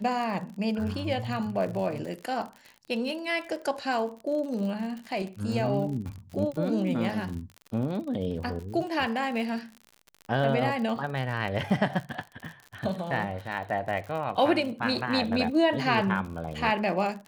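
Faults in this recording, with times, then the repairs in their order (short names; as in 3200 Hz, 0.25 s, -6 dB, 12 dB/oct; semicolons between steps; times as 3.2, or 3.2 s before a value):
crackle 57/s -35 dBFS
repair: de-click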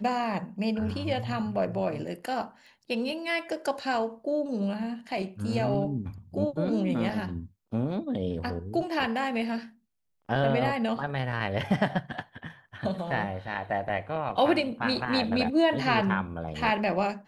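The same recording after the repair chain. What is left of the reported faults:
none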